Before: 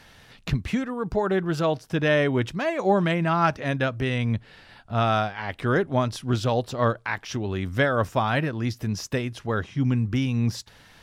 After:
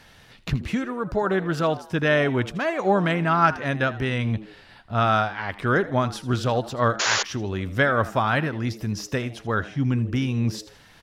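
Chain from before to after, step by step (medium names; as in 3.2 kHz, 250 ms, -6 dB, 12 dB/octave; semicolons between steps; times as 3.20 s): frequency-shifting echo 80 ms, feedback 40%, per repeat +100 Hz, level -17 dB; painted sound noise, 6.99–7.23 s, 360–7200 Hz -24 dBFS; dynamic bell 1.4 kHz, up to +5 dB, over -41 dBFS, Q 2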